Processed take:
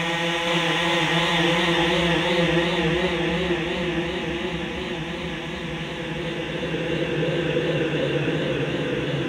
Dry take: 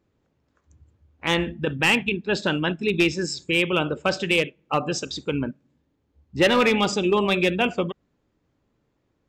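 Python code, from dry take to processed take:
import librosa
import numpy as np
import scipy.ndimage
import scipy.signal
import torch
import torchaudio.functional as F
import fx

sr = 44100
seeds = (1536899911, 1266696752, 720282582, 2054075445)

y = fx.rev_gated(x, sr, seeds[0], gate_ms=470, shape='flat', drr_db=6.5)
y = fx.paulstretch(y, sr, seeds[1], factor=20.0, window_s=0.25, from_s=1.28)
y = fx.echo_warbled(y, sr, ms=467, feedback_pct=69, rate_hz=2.8, cents=132, wet_db=-3.5)
y = y * librosa.db_to_amplitude(-2.0)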